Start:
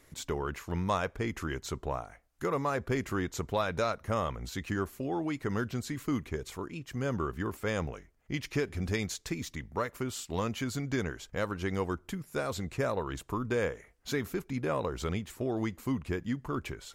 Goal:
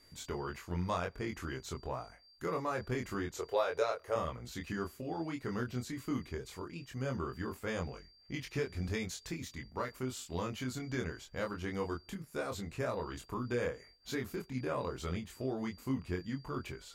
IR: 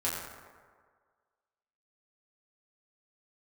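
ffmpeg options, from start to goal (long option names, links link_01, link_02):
-filter_complex "[0:a]aeval=exprs='val(0)+0.00141*sin(2*PI*4700*n/s)':channel_layout=same,asettb=1/sr,asplit=3[link_01][link_02][link_03];[link_01]atrim=end=3.374[link_04];[link_02]atrim=start=3.37:end=4.16,asetpts=PTS-STARTPTS,afade=type=in:duration=0.004:curve=qsin,afade=type=out:start_time=0.786:duration=0.004:curve=qsin,lowshelf=frequency=310:width_type=q:width=3:gain=-11.5[link_05];[link_03]atrim=start=4.156[link_06];[link_04][link_05]acrossfade=duration=0.004:curve1=hsin:curve2=qsin[link_07];[link_07][link_06]acrossfade=duration=0.004:curve1=qsin:curve2=hsin,flanger=delay=22.5:depth=2.3:speed=0.12,volume=-2dB"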